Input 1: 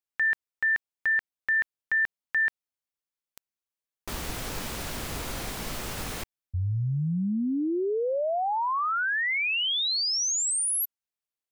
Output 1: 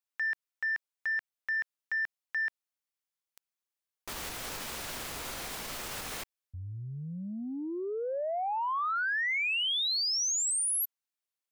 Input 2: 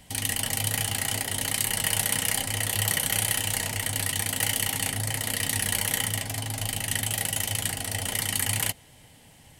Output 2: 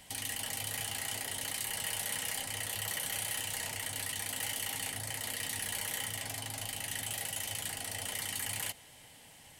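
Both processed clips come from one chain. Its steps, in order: soft clip -17 dBFS; limiter -27 dBFS; low shelf 350 Hz -10.5 dB

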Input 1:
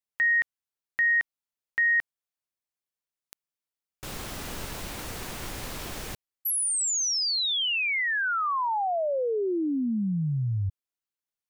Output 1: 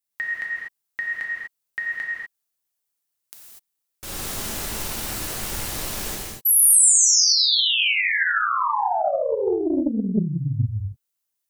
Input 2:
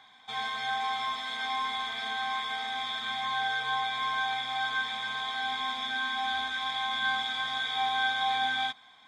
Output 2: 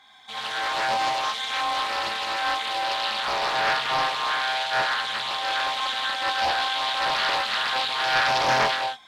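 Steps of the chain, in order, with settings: high shelf 5800 Hz +11.5 dB; non-linear reverb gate 0.27 s flat, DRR -4.5 dB; Doppler distortion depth 0.54 ms; gain -1.5 dB

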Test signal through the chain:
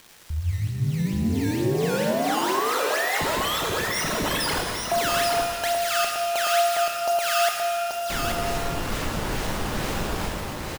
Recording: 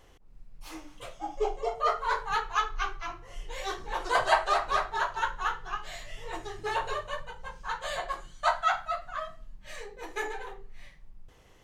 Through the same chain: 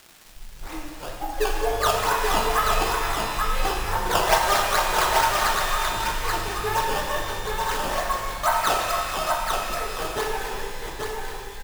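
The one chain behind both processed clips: expander -44 dBFS; dynamic EQ 4400 Hz, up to -6 dB, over -49 dBFS, Q 0.73; in parallel at +1 dB: compressor, threshold -37 dBFS; on the sum: decimation with a swept rate 13×, swing 160% 2.2 Hz; crackle 540/s -38 dBFS; on a send: echo 0.832 s -4 dB; on the sum: shimmer reverb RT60 2 s, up +12 st, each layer -8 dB, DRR 1.5 dB; gain +1.5 dB

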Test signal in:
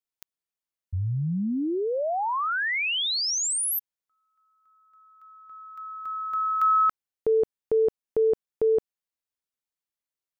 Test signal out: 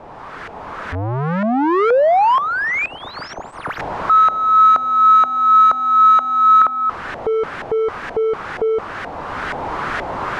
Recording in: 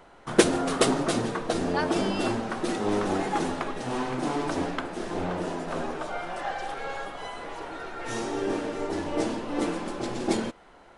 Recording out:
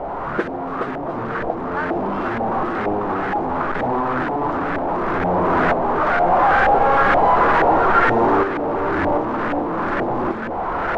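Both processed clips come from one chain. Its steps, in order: delta modulation 64 kbps, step -19 dBFS; recorder AGC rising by 7.8 dB/s; LFO low-pass saw up 2.1 Hz 710–1700 Hz; gain -5 dB

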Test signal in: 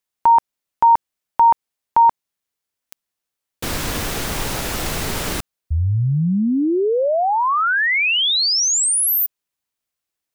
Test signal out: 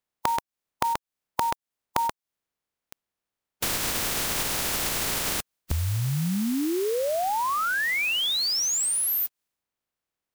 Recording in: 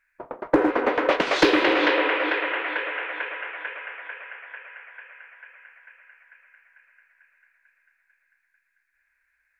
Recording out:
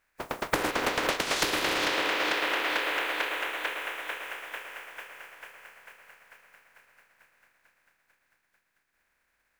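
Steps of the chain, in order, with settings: spectral contrast lowered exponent 0.41; compressor 16:1, threshold -25 dBFS; mismatched tape noise reduction decoder only; gain +1.5 dB

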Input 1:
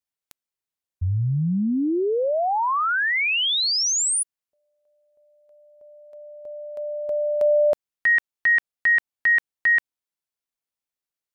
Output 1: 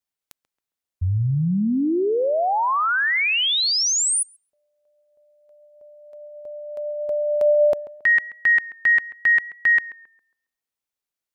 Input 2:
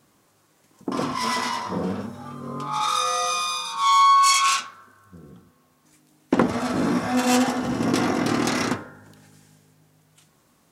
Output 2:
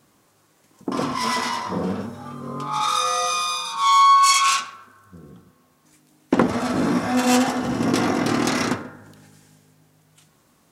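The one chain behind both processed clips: tape echo 0.135 s, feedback 36%, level -16 dB, low-pass 1800 Hz; gain +1.5 dB

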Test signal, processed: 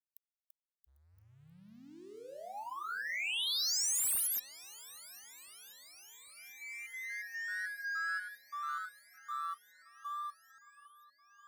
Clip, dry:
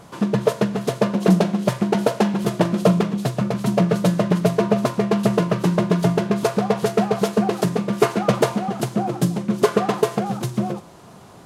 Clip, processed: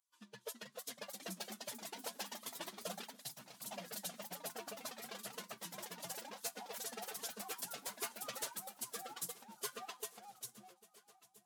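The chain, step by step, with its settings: per-bin expansion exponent 2; wow and flutter 24 cents; in parallel at -7 dB: crossover distortion -43.5 dBFS; on the sum: differentiator; soft clip -28.5 dBFS; on a send: swung echo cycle 1.33 s, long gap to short 1.5:1, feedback 63%, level -21 dB; on the sum: echoes that change speed 0.356 s, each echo +2 st, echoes 3; gain -5.5 dB

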